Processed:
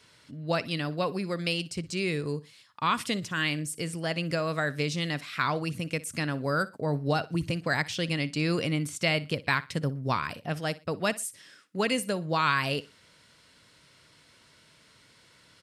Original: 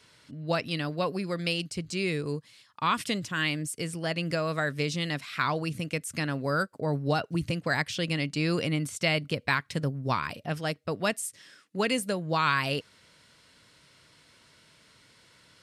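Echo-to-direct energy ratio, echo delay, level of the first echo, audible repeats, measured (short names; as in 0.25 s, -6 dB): -18.5 dB, 60 ms, -19.0 dB, 2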